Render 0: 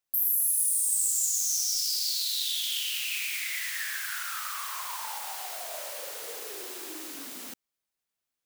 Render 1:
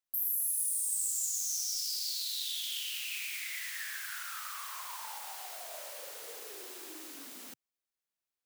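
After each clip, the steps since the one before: bell 130 Hz -7.5 dB 0.42 oct; gain -6.5 dB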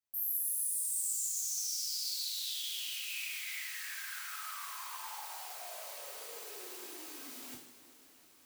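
reverse; upward compressor, threshold -40 dBFS; reverse; two-slope reverb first 0.52 s, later 4.6 s, from -17 dB, DRR -4.5 dB; gain -7.5 dB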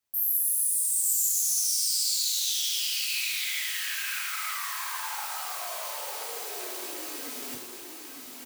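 echo 0.903 s -5 dB; gain +8.5 dB

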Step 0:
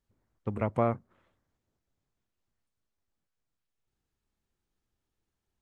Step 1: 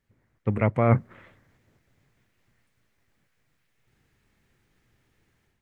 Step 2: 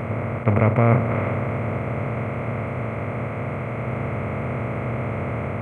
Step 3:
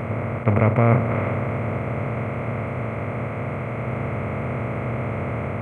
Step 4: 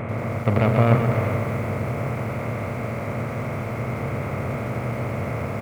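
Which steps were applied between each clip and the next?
reverse; compressor 10:1, threshold -33 dBFS, peak gain reduction 13.5 dB; reverse; graphic EQ 125/250/500/2000 Hz +9/+3/+4/+12 dB; AGC gain up to 10 dB; gain +1.5 dB
per-bin compression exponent 0.2
nothing audible
self-modulated delay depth 0.13 ms; echo 0.129 s -7.5 dB; lo-fi delay 88 ms, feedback 80%, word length 6-bit, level -14 dB; gain -1.5 dB

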